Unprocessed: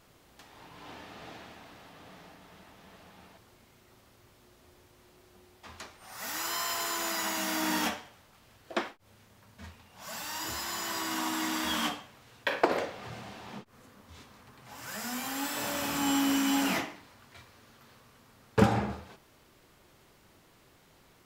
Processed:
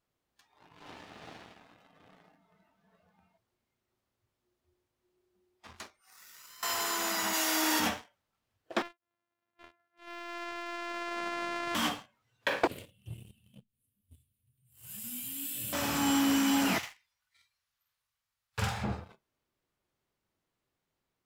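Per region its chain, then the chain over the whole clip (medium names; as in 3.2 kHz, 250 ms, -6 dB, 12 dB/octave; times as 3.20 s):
6.01–6.63 s: high-pass 1.5 kHz 6 dB/octave + compression 5:1, threshold -47 dBFS
7.33–7.80 s: brick-wall FIR high-pass 260 Hz + treble shelf 2.8 kHz +5 dB
8.82–11.75 s: sorted samples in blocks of 128 samples + low-pass 1.7 kHz + tilt EQ +4.5 dB/octave
12.67–15.73 s: FFT filter 120 Hz 0 dB, 580 Hz -19 dB, 870 Hz -27 dB, 2 kHz -17 dB, 2.9 kHz -4 dB, 5.8 kHz -15 dB, 9 kHz +4 dB + delay 91 ms -22 dB
16.78–18.84 s: amplifier tone stack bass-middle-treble 10-0-10 + doubling 48 ms -3 dB
whole clip: spectral noise reduction 13 dB; dynamic bell 100 Hz, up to +7 dB, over -55 dBFS, Q 1.6; waveshaping leveller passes 2; trim -7 dB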